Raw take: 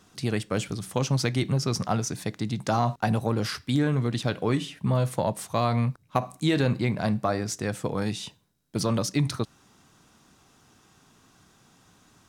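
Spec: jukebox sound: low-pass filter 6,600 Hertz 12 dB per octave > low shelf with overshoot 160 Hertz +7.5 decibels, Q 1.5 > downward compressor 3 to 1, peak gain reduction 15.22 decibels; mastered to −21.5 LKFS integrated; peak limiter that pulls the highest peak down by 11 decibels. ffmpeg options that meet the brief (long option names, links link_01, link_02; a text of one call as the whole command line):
ffmpeg -i in.wav -af "alimiter=limit=-17.5dB:level=0:latency=1,lowpass=6600,lowshelf=frequency=160:width_type=q:width=1.5:gain=7.5,acompressor=threshold=-36dB:ratio=3,volume=15dB" out.wav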